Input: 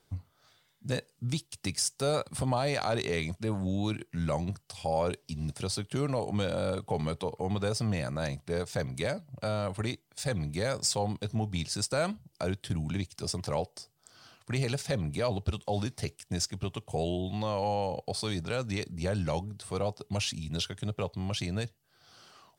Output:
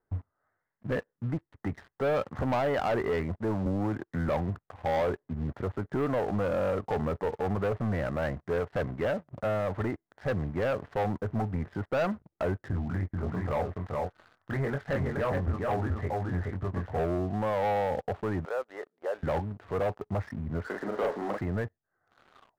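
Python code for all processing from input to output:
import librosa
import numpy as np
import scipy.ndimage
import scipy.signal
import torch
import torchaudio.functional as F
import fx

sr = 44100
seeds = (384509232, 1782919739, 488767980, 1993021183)

y = fx.chain(x, sr, fx.law_mismatch(coded='A'),
    fx.band_squash(depth_pct=70), at=(3.66, 4.29))
y = fx.chain(y, sr, fx.peak_eq(hz=380.0, db=-5.0, octaves=2.6),
    fx.doubler(ms=22.0, db=-4.5),
    fx.echo_single(ms=424, db=-3.5), at=(12.71, 16.99))
y = fx.chain(y, sr, fx.highpass(hz=480.0, slope=24),
    fx.spacing_loss(db_at_10k=42), at=(18.45, 19.23))
y = fx.chain(y, sr, fx.zero_step(step_db=-39.0),
    fx.highpass(hz=240.0, slope=24),
    fx.doubler(ms=40.0, db=-3.0), at=(20.66, 21.41))
y = scipy.signal.sosfilt(scipy.signal.butter(16, 2000.0, 'lowpass', fs=sr, output='sos'), y)
y = fx.peak_eq(y, sr, hz=140.0, db=-8.0, octaves=0.84)
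y = fx.leveller(y, sr, passes=3)
y = y * librosa.db_to_amplitude(-4.0)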